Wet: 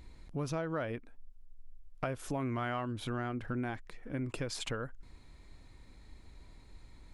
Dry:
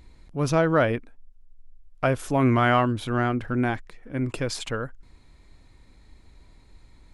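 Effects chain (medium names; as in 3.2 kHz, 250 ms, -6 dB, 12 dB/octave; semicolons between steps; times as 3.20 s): compression 5:1, threshold -32 dBFS, peak gain reduction 14.5 dB; trim -2 dB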